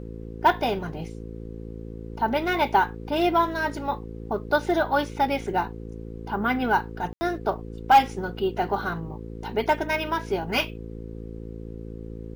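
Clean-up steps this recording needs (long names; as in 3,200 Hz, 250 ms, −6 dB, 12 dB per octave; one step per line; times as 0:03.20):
clipped peaks rebuilt −9 dBFS
hum removal 55.7 Hz, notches 9
ambience match 0:07.13–0:07.21
downward expander −29 dBFS, range −21 dB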